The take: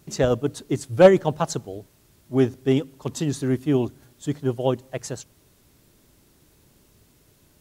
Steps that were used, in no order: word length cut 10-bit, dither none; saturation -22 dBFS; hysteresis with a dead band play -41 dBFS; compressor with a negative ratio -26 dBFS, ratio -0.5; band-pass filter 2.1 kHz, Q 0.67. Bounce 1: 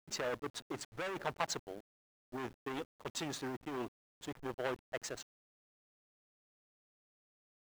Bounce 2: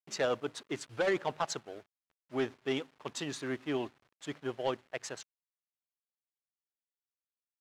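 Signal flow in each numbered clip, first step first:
saturation > compressor with a negative ratio > band-pass filter > hysteresis with a dead band > word length cut; hysteresis with a dead band > word length cut > band-pass filter > saturation > compressor with a negative ratio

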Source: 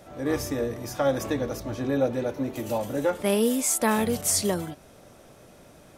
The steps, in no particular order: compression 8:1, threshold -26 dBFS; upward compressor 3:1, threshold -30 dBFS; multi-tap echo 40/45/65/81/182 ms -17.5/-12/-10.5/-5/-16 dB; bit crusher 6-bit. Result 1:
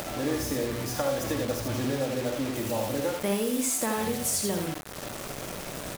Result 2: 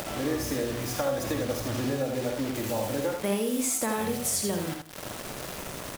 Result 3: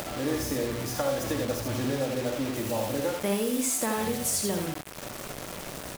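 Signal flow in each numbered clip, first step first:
compression > upward compressor > multi-tap echo > bit crusher; upward compressor > bit crusher > compression > multi-tap echo; compression > multi-tap echo > upward compressor > bit crusher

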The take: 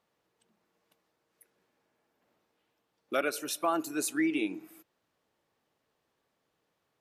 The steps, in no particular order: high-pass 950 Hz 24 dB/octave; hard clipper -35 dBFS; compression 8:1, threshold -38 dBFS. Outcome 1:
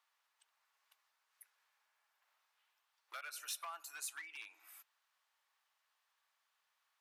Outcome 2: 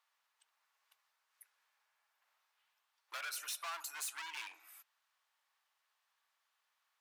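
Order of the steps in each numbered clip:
compression > hard clipper > high-pass; hard clipper > high-pass > compression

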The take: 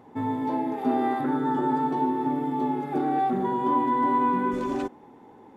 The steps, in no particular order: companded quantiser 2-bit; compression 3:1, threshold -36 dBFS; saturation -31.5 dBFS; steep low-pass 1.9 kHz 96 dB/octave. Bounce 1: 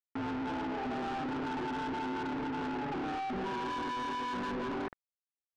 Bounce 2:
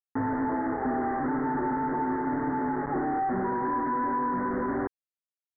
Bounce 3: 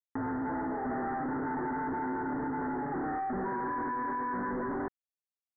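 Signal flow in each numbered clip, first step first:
companded quantiser > steep low-pass > saturation > compression; compression > saturation > companded quantiser > steep low-pass; saturation > companded quantiser > compression > steep low-pass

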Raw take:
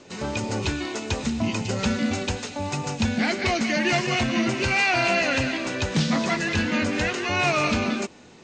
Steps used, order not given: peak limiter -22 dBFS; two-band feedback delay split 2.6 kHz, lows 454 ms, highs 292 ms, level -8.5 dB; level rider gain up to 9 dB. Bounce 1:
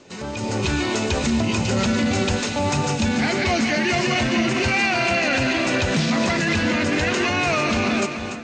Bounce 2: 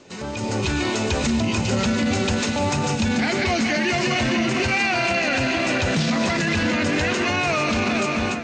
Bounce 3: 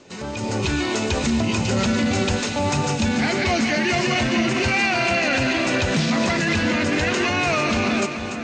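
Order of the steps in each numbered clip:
peak limiter > two-band feedback delay > level rider; two-band feedback delay > peak limiter > level rider; peak limiter > level rider > two-band feedback delay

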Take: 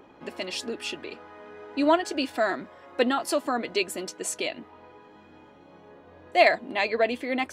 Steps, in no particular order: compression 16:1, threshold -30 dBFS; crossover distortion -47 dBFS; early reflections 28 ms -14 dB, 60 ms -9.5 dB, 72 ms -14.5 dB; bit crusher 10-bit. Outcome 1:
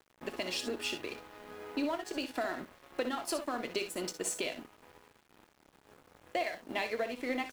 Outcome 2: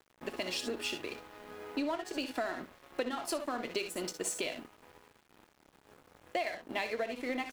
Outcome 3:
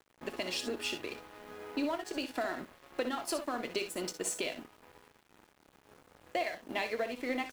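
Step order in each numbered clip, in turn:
compression > early reflections > bit crusher > crossover distortion; early reflections > bit crusher > compression > crossover distortion; compression > bit crusher > early reflections > crossover distortion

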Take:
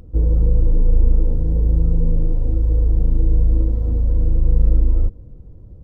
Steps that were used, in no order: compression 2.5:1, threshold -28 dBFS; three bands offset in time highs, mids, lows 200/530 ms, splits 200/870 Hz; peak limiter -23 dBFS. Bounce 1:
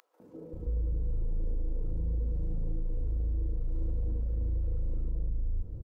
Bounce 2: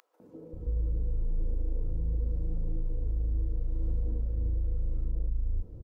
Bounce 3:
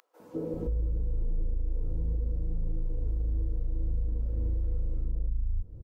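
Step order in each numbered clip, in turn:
peak limiter > three bands offset in time > compression; compression > peak limiter > three bands offset in time; three bands offset in time > compression > peak limiter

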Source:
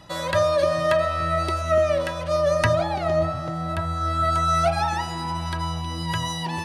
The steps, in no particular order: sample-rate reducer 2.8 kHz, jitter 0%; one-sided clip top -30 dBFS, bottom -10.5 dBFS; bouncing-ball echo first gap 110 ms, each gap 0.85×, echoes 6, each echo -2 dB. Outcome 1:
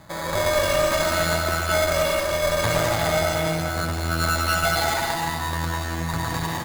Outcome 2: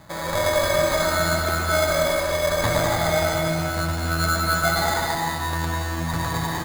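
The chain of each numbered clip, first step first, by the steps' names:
sample-rate reducer > bouncing-ball echo > one-sided clip; one-sided clip > sample-rate reducer > bouncing-ball echo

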